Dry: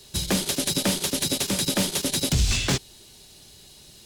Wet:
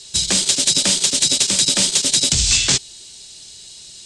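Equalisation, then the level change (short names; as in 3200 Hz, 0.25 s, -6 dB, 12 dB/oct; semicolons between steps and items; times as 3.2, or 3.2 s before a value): elliptic low-pass 8300 Hz, stop band 80 dB; high shelf 2200 Hz +10 dB; high shelf 4400 Hz +8.5 dB; -1.0 dB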